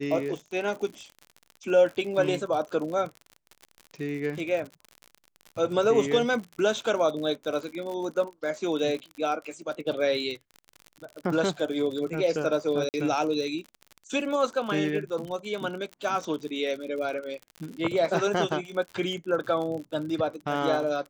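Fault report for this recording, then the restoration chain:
crackle 59/s -34 dBFS
12.89–12.94 gap 49 ms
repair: de-click; interpolate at 12.89, 49 ms

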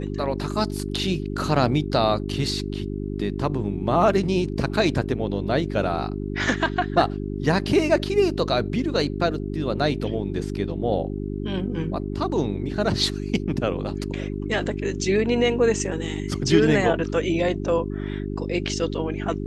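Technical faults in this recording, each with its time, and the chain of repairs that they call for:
hum 50 Hz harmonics 8 -29 dBFS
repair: de-hum 50 Hz, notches 8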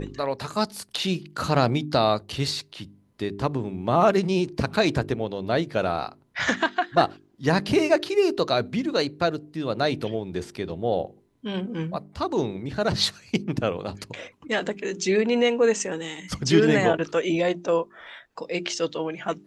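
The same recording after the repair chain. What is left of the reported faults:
none

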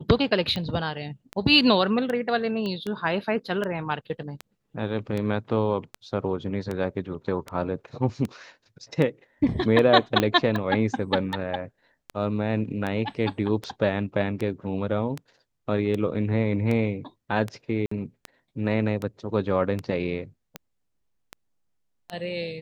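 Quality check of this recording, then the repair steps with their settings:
tick 78 rpm -17 dBFS
2.66 pop -20 dBFS
10.2 pop -8 dBFS
17.86–17.91 gap 54 ms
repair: de-click; interpolate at 17.86, 54 ms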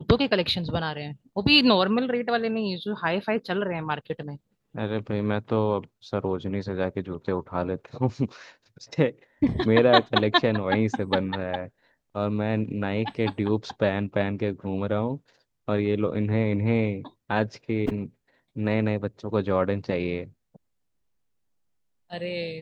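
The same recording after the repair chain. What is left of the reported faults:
10.2 pop

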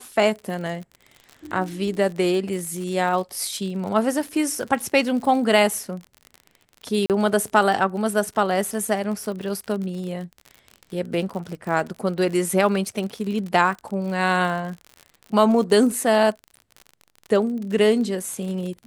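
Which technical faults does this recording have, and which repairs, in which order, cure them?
crackle 54/s -30 dBFS
7.06–7.1 gap 38 ms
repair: de-click; interpolate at 7.06, 38 ms

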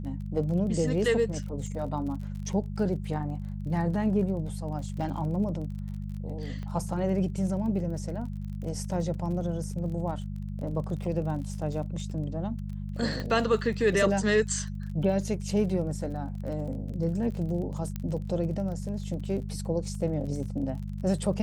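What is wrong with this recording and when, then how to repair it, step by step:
crackle 34/s -38 dBFS
hum 50 Hz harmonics 4 -35 dBFS
6.63 pop -28 dBFS
13.2 pop -21 dBFS
17.96 pop -20 dBFS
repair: de-click; de-hum 50 Hz, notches 4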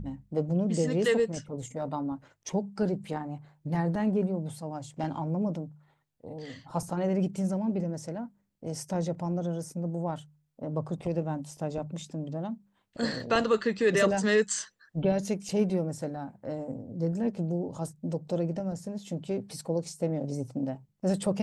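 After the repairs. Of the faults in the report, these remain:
6.63 pop
13.2 pop

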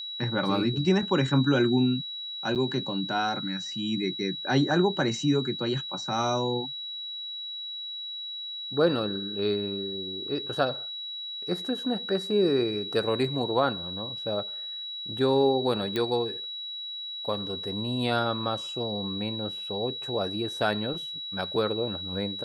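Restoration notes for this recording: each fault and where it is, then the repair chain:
tone 3900 Hz -34 dBFS
2.55–2.56 gap 8 ms
15.96 pop -16 dBFS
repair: de-click; notch 3900 Hz, Q 30; interpolate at 2.55, 8 ms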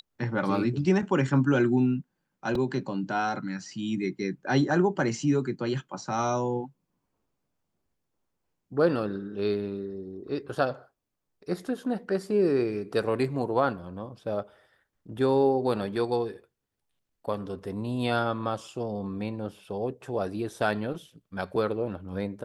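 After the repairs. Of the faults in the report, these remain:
none

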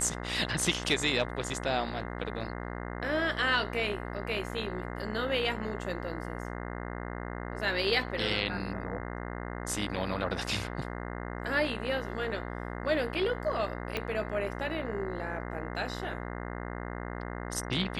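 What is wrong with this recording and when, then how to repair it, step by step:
buzz 60 Hz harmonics 35 -38 dBFS
13.97 pop -17 dBFS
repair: de-click; de-hum 60 Hz, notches 35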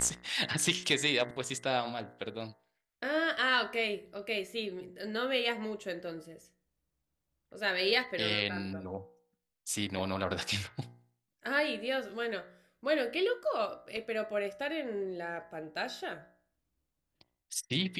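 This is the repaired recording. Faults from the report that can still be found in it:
13.97 pop

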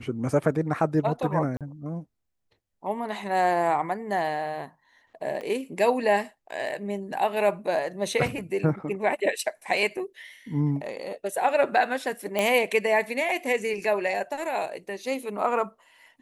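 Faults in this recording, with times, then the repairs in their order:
1.57–1.61 gap 37 ms
5.41 gap 4.5 ms
12.39 pop -12 dBFS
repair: de-click; interpolate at 1.57, 37 ms; interpolate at 5.41, 4.5 ms

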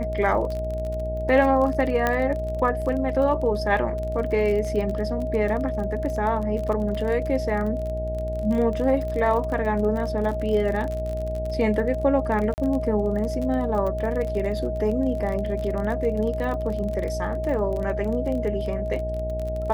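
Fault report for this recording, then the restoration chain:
buzz 60 Hz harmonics 14 -30 dBFS
crackle 32/s -29 dBFS
tone 630 Hz -28 dBFS
2.07 pop -9 dBFS
12.54–12.58 gap 39 ms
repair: de-click; de-hum 60 Hz, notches 14; notch 630 Hz, Q 30; interpolate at 12.54, 39 ms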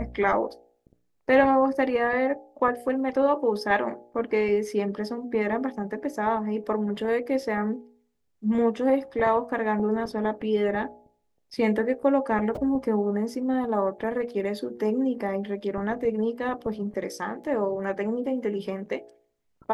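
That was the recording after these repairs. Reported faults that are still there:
none

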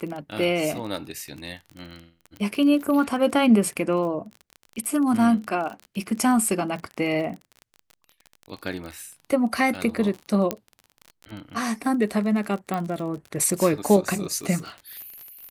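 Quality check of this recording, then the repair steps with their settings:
crackle 31/s -31 dBFS
10.51 pop -9 dBFS
12.74 pop -15 dBFS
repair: de-click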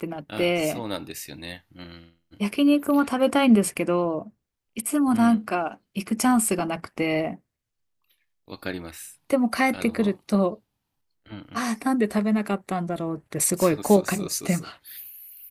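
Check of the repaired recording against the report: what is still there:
none

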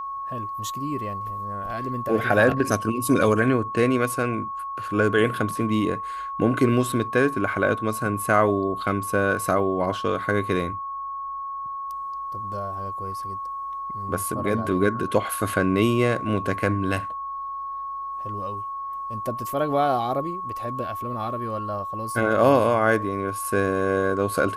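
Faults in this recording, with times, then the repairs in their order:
tone 1100 Hz -29 dBFS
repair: notch 1100 Hz, Q 30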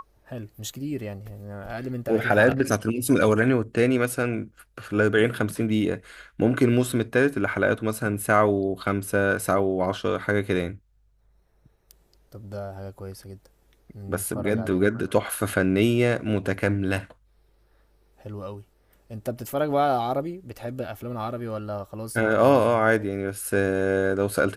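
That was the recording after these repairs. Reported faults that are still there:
none

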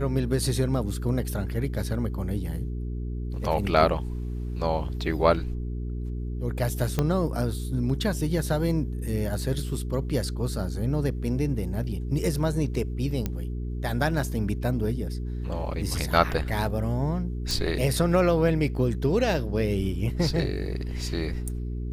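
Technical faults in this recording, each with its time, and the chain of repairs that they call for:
hum 60 Hz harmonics 7 -31 dBFS
6.99 pop -11 dBFS
13.26 pop -14 dBFS
17.51 pop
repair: de-click; de-hum 60 Hz, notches 7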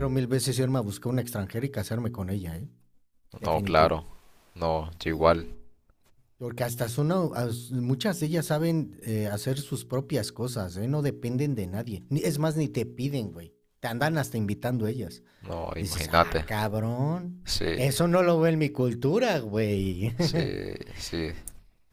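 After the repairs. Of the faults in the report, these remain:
6.99 pop

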